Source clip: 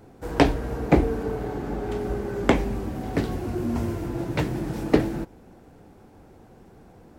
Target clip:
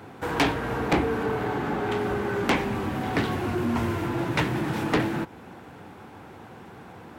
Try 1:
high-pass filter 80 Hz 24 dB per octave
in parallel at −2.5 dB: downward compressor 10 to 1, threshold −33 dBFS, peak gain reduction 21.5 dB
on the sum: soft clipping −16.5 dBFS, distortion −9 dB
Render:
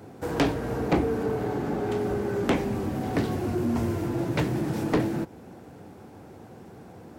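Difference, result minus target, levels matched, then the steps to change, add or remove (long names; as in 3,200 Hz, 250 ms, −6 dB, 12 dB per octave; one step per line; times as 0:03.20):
2,000 Hz band −6.0 dB
add after high-pass filter: flat-topped bell 1,800 Hz +8.5 dB 2.4 octaves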